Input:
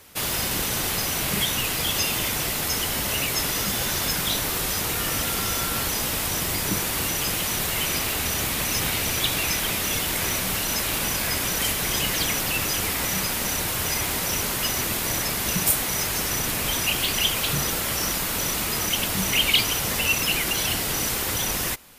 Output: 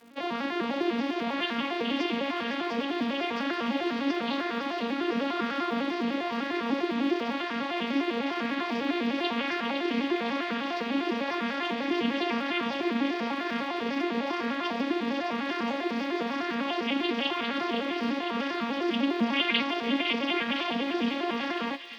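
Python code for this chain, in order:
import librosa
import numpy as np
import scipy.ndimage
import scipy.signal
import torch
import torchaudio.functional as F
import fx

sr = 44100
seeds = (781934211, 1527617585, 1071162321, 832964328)

y = fx.vocoder_arp(x, sr, chord='minor triad', root=58, every_ms=100)
y = scipy.signal.sosfilt(scipy.signal.butter(4, 3800.0, 'lowpass', fs=sr, output='sos'), y)
y = fx.echo_wet_highpass(y, sr, ms=507, feedback_pct=67, hz=1900.0, wet_db=-7)
y = fx.dmg_crackle(y, sr, seeds[0], per_s=280.0, level_db=-47.0)
y = fx.bell_lfo(y, sr, hz=1.0, low_hz=270.0, high_hz=1600.0, db=6)
y = F.gain(torch.from_numpy(y), -3.0).numpy()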